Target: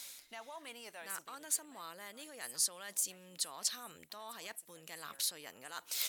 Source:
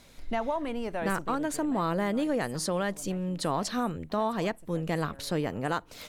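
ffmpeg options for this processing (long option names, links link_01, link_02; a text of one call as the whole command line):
ffmpeg -i in.wav -af "alimiter=level_in=0.5dB:limit=-24dB:level=0:latency=1:release=103,volume=-0.5dB,areverse,acompressor=threshold=-41dB:ratio=6,areverse,aderivative,volume=14dB" out.wav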